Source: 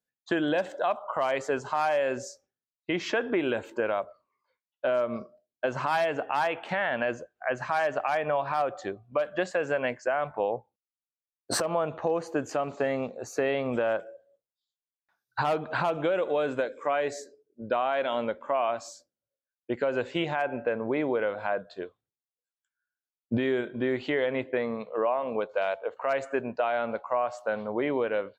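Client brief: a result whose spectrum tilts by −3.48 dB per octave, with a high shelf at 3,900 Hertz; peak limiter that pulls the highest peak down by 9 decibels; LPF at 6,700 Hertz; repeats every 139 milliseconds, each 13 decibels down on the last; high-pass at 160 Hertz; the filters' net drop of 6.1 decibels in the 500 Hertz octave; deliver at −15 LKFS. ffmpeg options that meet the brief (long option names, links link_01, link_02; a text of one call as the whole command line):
ffmpeg -i in.wav -af "highpass=160,lowpass=6700,equalizer=frequency=500:width_type=o:gain=-7.5,highshelf=frequency=3900:gain=-8,alimiter=level_in=2dB:limit=-24dB:level=0:latency=1,volume=-2dB,aecho=1:1:139|278|417:0.224|0.0493|0.0108,volume=22.5dB" out.wav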